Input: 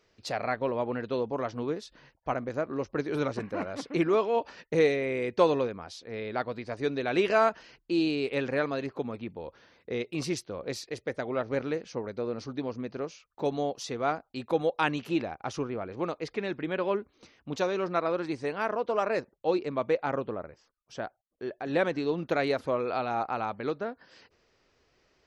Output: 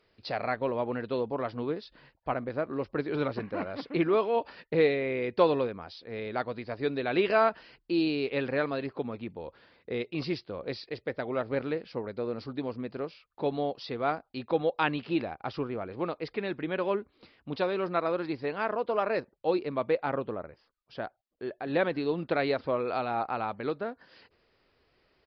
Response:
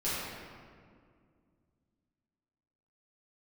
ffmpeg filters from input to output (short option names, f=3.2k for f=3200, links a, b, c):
-af "aresample=11025,aresample=44100" -ar 44100 -c:a libmp3lame -b:a 56k